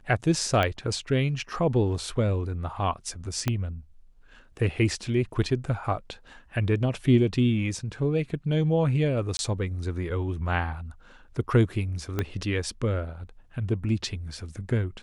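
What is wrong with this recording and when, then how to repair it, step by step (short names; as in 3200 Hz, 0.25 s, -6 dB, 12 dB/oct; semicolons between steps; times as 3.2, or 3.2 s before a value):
0.63 pop -13 dBFS
3.48 pop -11 dBFS
9.37–9.39 gap 21 ms
12.19 pop -13 dBFS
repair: de-click; interpolate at 9.37, 21 ms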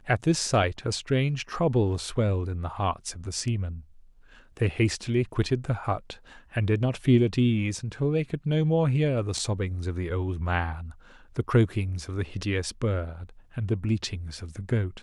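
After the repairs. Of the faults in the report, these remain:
0.63 pop
3.48 pop
12.19 pop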